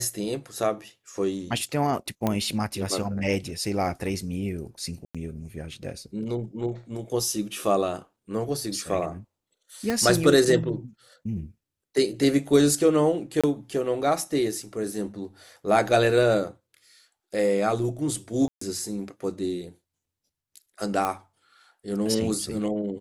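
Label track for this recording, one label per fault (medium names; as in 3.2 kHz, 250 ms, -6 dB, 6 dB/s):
2.270000	2.270000	pop -11 dBFS
5.050000	5.150000	dropout 96 ms
9.900000	9.900000	pop -12 dBFS
13.410000	13.440000	dropout 26 ms
18.480000	18.610000	dropout 134 ms
21.050000	21.050000	pop -13 dBFS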